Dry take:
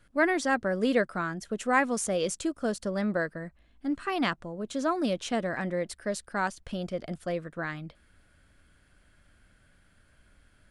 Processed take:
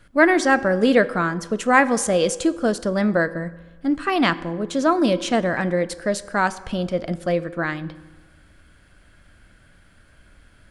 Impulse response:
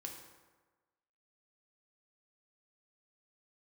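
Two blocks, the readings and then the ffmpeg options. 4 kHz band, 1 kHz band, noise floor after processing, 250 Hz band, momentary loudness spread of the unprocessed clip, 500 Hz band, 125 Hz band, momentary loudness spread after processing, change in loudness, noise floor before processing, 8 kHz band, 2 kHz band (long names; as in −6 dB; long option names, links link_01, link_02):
+9.0 dB, +9.0 dB, −53 dBFS, +9.5 dB, 10 LU, +9.5 dB, +9.5 dB, 10 LU, +9.0 dB, −64 dBFS, +7.5 dB, +9.0 dB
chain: -filter_complex "[0:a]asplit=2[link_01][link_02];[1:a]atrim=start_sample=2205,lowpass=7500[link_03];[link_02][link_03]afir=irnorm=-1:irlink=0,volume=-5.5dB[link_04];[link_01][link_04]amix=inputs=2:normalize=0,volume=7dB"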